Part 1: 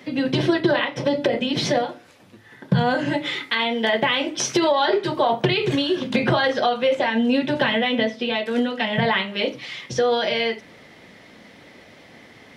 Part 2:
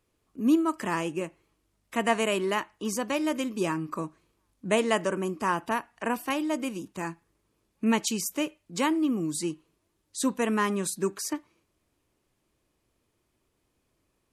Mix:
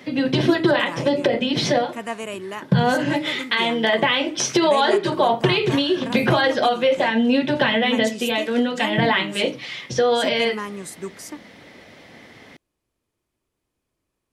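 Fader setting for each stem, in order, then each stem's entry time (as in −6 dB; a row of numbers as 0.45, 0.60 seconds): +1.5, −4.5 decibels; 0.00, 0.00 seconds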